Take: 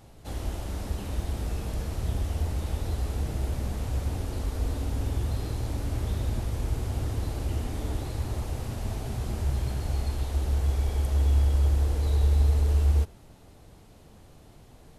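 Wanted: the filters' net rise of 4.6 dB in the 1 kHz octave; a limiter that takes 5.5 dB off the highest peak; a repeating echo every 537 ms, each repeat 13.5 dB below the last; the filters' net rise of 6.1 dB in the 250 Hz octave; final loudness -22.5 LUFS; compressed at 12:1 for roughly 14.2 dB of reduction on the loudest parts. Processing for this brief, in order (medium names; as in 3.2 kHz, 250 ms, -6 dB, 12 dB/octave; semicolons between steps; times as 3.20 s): peaking EQ 250 Hz +7.5 dB; peaking EQ 1 kHz +5.5 dB; compression 12:1, threshold -32 dBFS; peak limiter -30 dBFS; feedback delay 537 ms, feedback 21%, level -13.5 dB; trim +17 dB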